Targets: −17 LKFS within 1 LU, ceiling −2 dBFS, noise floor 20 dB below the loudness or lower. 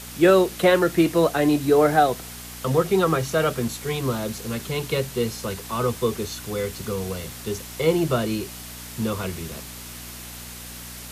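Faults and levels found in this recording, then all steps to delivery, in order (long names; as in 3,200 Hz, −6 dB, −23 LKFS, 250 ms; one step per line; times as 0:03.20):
mains hum 60 Hz; hum harmonics up to 240 Hz; level of the hum −41 dBFS; background noise floor −38 dBFS; target noise floor −43 dBFS; integrated loudness −23.0 LKFS; sample peak −4.5 dBFS; target loudness −17.0 LKFS
→ hum removal 60 Hz, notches 4
noise reduction from a noise print 6 dB
level +6 dB
brickwall limiter −2 dBFS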